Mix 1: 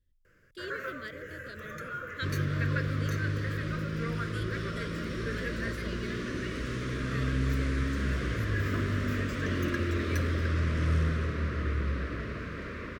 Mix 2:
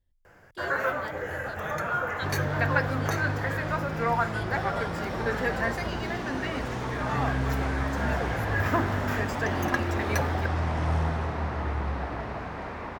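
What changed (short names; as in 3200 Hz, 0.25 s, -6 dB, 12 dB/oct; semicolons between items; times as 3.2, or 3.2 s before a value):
first sound +8.0 dB; master: remove Butterworth band-stop 810 Hz, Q 1.1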